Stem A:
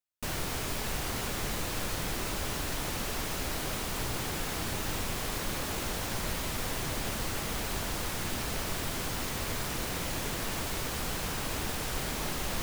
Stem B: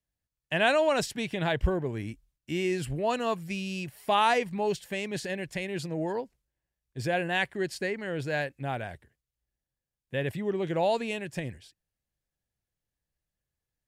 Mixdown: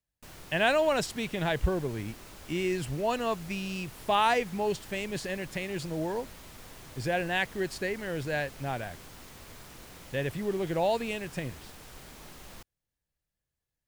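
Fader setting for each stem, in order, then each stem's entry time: −14.5, −1.0 decibels; 0.00, 0.00 seconds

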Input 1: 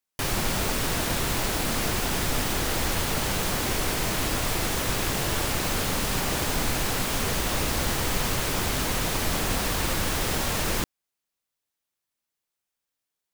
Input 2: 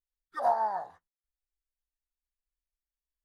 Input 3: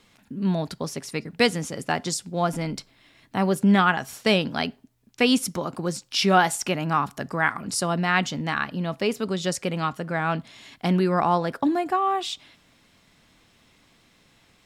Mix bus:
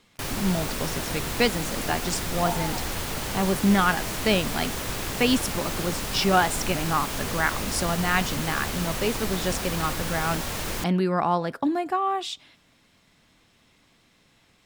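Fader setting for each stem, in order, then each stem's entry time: −4.0, −5.5, −2.0 decibels; 0.00, 2.00, 0.00 seconds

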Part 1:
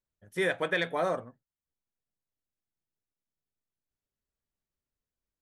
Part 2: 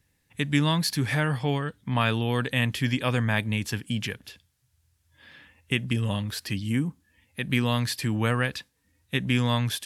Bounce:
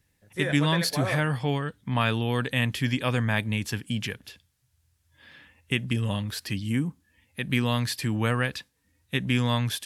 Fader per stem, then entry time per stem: −2.5, −0.5 decibels; 0.00, 0.00 seconds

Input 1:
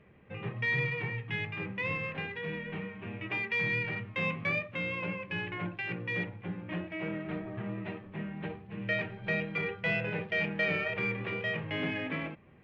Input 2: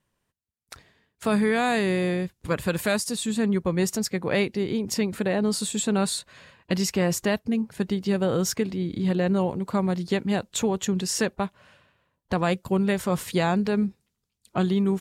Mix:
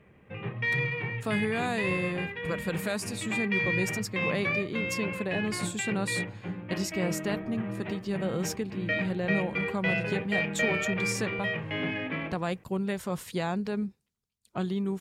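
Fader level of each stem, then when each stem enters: +2.0, −7.5 decibels; 0.00, 0.00 seconds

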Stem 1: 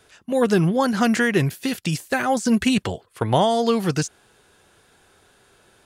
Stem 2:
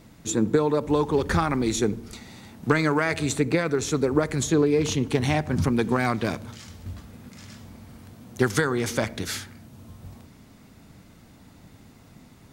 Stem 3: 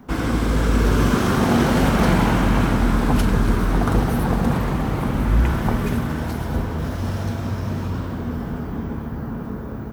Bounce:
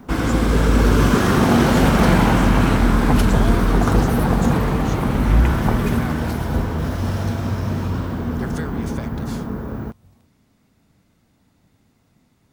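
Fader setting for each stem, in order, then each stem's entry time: −11.0, −10.0, +2.5 decibels; 0.00, 0.00, 0.00 seconds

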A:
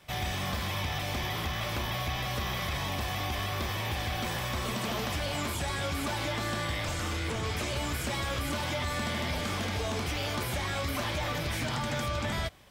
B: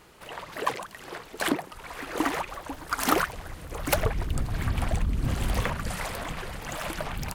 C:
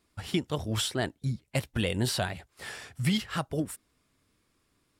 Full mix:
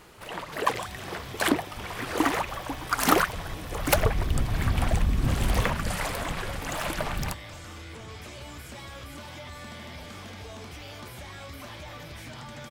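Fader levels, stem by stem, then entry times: −9.5, +2.5, −17.0 decibels; 0.65, 0.00, 0.00 seconds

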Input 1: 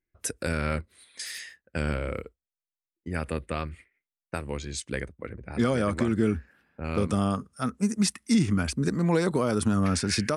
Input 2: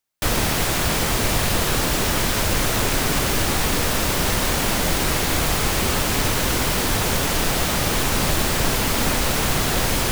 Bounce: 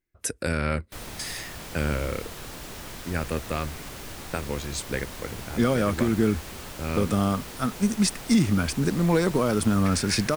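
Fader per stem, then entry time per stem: +2.0, −18.5 decibels; 0.00, 0.70 seconds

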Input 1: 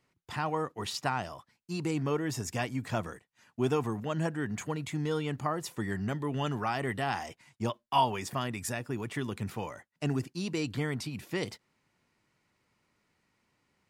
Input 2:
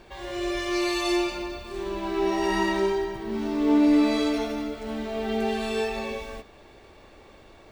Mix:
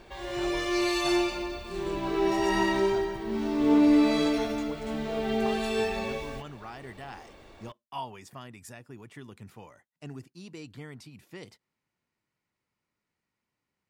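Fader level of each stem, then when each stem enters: −11.0, −1.0 decibels; 0.00, 0.00 seconds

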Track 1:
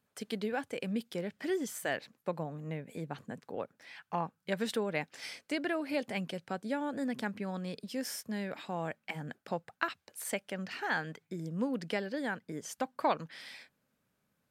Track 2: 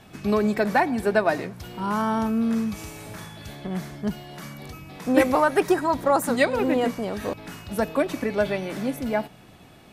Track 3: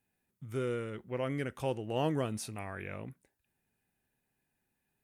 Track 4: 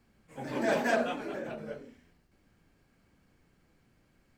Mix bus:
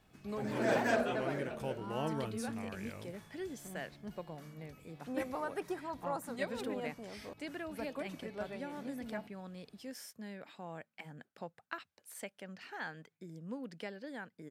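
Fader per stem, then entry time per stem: −9.5, −19.0, −6.0, −3.5 decibels; 1.90, 0.00, 0.00, 0.00 seconds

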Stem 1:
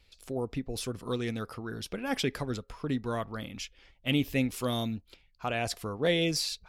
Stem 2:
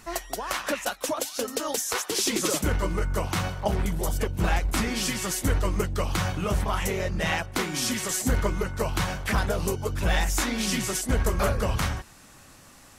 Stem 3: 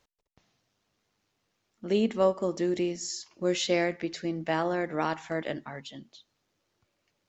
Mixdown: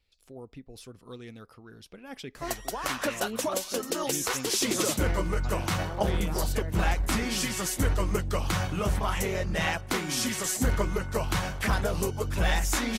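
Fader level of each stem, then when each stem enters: −11.0, −1.5, −12.0 decibels; 0.00, 2.35, 1.30 seconds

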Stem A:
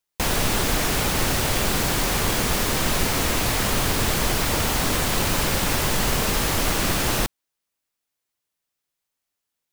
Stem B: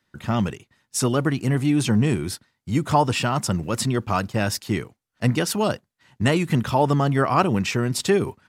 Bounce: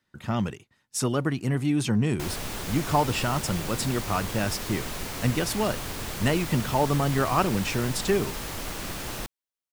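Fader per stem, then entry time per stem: −12.0, −4.5 decibels; 2.00, 0.00 seconds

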